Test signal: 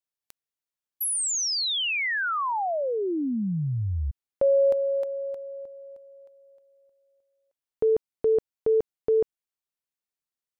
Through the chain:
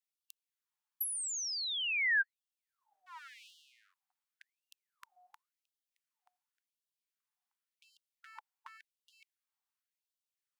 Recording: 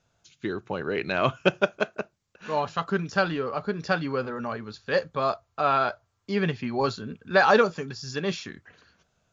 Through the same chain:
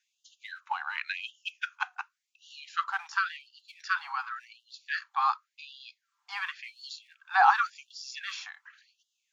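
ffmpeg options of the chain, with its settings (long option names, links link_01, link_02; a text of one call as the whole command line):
ffmpeg -i in.wav -filter_complex "[0:a]highpass=frequency=140:width=0.5412,highpass=frequency=140:width=1.3066,adynamicequalizer=threshold=0.00562:dfrequency=200:dqfactor=5.8:tfrequency=200:tqfactor=5.8:attack=5:release=100:ratio=0.333:range=1.5:mode=boostabove:tftype=bell,asplit=2[link_01][link_02];[link_02]alimiter=limit=-14.5dB:level=0:latency=1:release=451,volume=-1dB[link_03];[link_01][link_03]amix=inputs=2:normalize=0,tiltshelf=frequency=900:gain=8.5,acrossover=split=270|1800[link_04][link_05][link_06];[link_04]aeval=exprs='clip(val(0),-1,0.0473)':channel_layout=same[link_07];[link_06]acompressor=threshold=-41dB:ratio=8:attack=90:release=55:knee=6:detection=peak[link_08];[link_07][link_05][link_08]amix=inputs=3:normalize=0,afftfilt=real='re*gte(b*sr/1024,710*pow(2800/710,0.5+0.5*sin(2*PI*0.91*pts/sr)))':imag='im*gte(b*sr/1024,710*pow(2800/710,0.5+0.5*sin(2*PI*0.91*pts/sr)))':win_size=1024:overlap=0.75" out.wav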